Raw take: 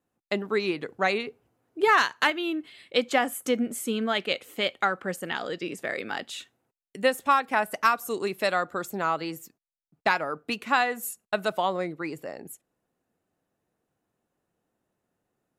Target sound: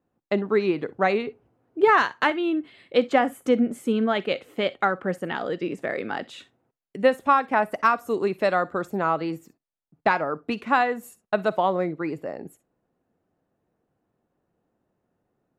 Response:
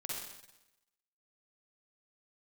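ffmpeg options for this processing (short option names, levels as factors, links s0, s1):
-filter_complex "[0:a]lowpass=f=1000:p=1,asplit=2[s0][s1];[1:a]atrim=start_sample=2205,atrim=end_sample=3087,highshelf=f=2300:g=11[s2];[s1][s2]afir=irnorm=-1:irlink=0,volume=0.1[s3];[s0][s3]amix=inputs=2:normalize=0,volume=1.88"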